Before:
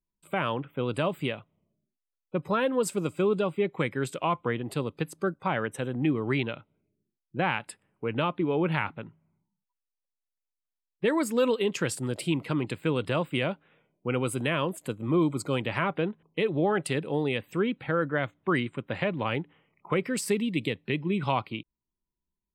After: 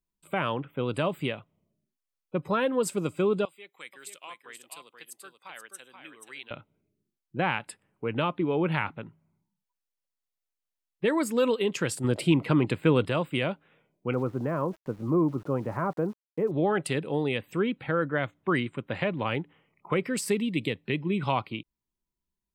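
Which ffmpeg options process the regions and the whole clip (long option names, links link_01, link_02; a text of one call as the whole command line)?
ffmpeg -i in.wav -filter_complex "[0:a]asettb=1/sr,asplit=3[link_01][link_02][link_03];[link_01]atrim=end=3.454[link_04];[link_02]atrim=start=3.45:end=6.51,asetpts=PTS-STARTPTS,afade=type=in:duration=0.004:curve=qsin,afade=type=out:start_time=3.056:duration=0.004:curve=qsin,highpass=160,aderivative,aecho=1:1:481:0.473,atrim=end_sample=134946[link_05];[link_03]atrim=start=6.506[link_06];[link_04][link_05]acrossfade=duration=0.004:curve1=hsin:curve2=qsin[link_07];[link_07][link_06]acrossfade=duration=0.004:curve1=qsin:curve2=hsin,asettb=1/sr,asplit=3[link_08][link_09][link_10];[link_08]atrim=end=12.044[link_11];[link_09]atrim=start=12.04:end=13.06,asetpts=PTS-STARTPTS,afade=type=in:duration=0.004:curve=qsin,afade=type=out:start_time=1.016:duration=0.004:curve=qsin,highshelf=frequency=3800:gain=-7.5,acontrast=42[link_12];[link_10]atrim=start=13.056[link_13];[link_11][link_12]acrossfade=duration=0.004:curve1=hsin:curve2=qsin[link_14];[link_14][link_13]acrossfade=duration=0.004:curve1=qsin:curve2=hsin,asettb=1/sr,asplit=3[link_15][link_16][link_17];[link_15]atrim=end=14.134[link_18];[link_16]atrim=start=14.13:end=16.51,asetpts=PTS-STARTPTS,afade=type=in:duration=0.004:curve=qsin,afade=type=out:start_time=2.376:duration=0.004:curve=qsin,lowpass=frequency=1300:width=0.5412,lowpass=frequency=1300:width=1.3066,aeval=exprs='val(0)*gte(abs(val(0)),0.00316)':channel_layout=same[link_19];[link_17]atrim=start=16.506[link_20];[link_18][link_19]acrossfade=duration=0.004:curve1=hsin:curve2=qsin[link_21];[link_21][link_20]acrossfade=duration=0.004:curve1=qsin:curve2=hsin" out.wav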